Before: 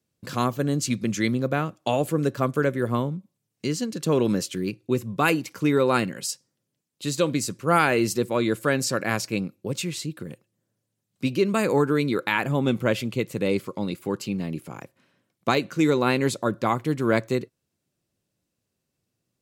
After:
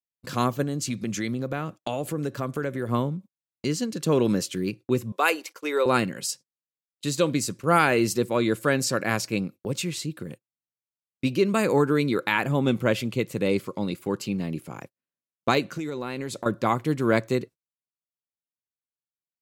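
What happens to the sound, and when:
0:00.63–0:02.89: downward compressor 2.5 to 1, threshold −26 dBFS
0:05.12–0:05.86: high-pass filter 410 Hz 24 dB per octave
0:15.77–0:16.46: downward compressor 12 to 1, threshold −27 dBFS
whole clip: noise gate −40 dBFS, range −33 dB

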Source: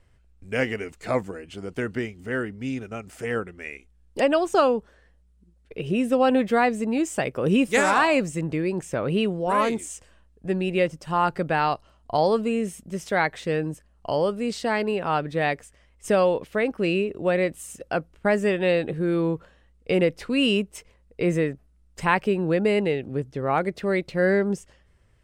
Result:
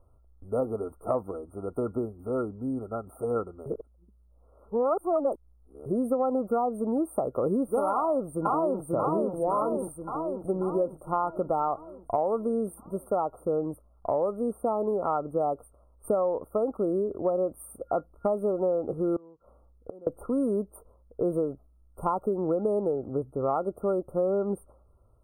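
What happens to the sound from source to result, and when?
0:03.66–0:05.86: reverse
0:07.91–0:08.84: delay throw 540 ms, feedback 60%, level −1 dB
0:19.16–0:20.07: gate with flip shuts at −19 dBFS, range −27 dB
whole clip: brick-wall band-stop 1,400–8,600 Hz; graphic EQ with 15 bands 160 Hz −8 dB, 630 Hz +4 dB, 10,000 Hz −4 dB; downward compressor 6 to 1, threshold −23 dBFS

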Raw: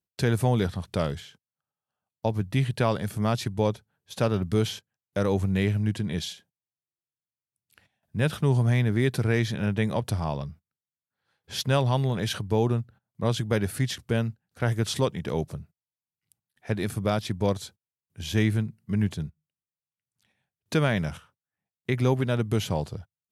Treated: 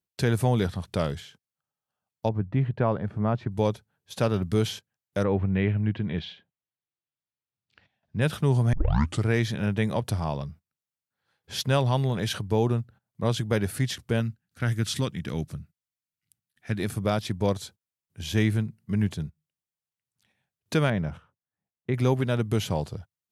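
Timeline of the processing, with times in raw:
0:02.29–0:03.52: low-pass filter 1,400 Hz
0:05.23–0:08.20: low-pass filter 2,500 Hz → 5,700 Hz 24 dB per octave
0:08.73: tape start 0.52 s
0:14.20–0:16.80: flat-topped bell 630 Hz −8 dB
0:20.90–0:21.94: low-pass filter 1,000 Hz 6 dB per octave

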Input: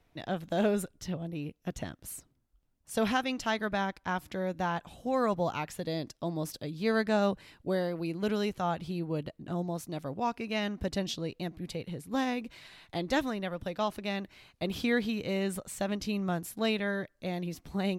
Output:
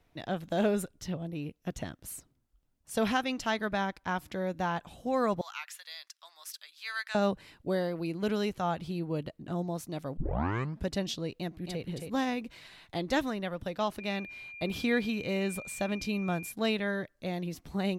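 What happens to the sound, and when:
0:05.41–0:07.15: high-pass filter 1,300 Hz 24 dB per octave
0:10.17: tape start 0.70 s
0:11.39–0:11.82: delay throw 270 ms, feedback 15%, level −5.5 dB
0:13.99–0:16.51: steady tone 2,400 Hz −43 dBFS

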